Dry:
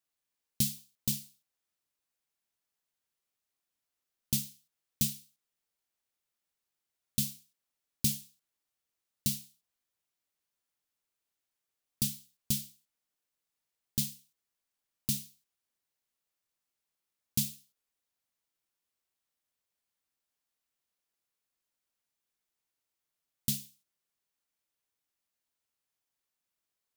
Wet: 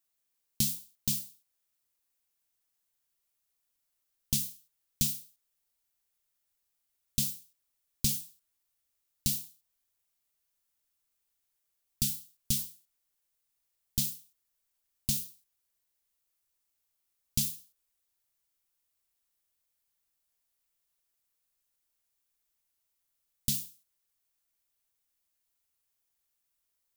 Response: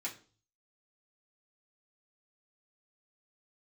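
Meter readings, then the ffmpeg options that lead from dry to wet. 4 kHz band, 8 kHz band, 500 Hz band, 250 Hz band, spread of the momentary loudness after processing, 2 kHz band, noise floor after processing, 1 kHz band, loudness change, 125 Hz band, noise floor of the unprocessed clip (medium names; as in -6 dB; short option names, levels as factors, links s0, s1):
+2.0 dB, +2.5 dB, -0.5 dB, -1.5 dB, 15 LU, +1.0 dB, -81 dBFS, no reading, +1.5 dB, 0.0 dB, under -85 dBFS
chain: -filter_complex "[0:a]acrossover=split=8200[s0][s1];[s1]acompressor=threshold=0.0178:ratio=4:attack=1:release=60[s2];[s0][s2]amix=inputs=2:normalize=0,crystalizer=i=1:c=0,asubboost=boost=3:cutoff=86"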